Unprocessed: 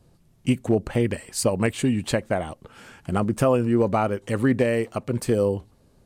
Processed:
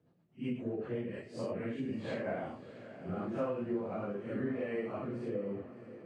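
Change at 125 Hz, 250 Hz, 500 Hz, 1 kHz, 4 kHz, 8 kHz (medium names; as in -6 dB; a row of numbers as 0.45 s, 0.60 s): -18.0 dB, -13.5 dB, -13.5 dB, -16.0 dB, -20.0 dB, under -30 dB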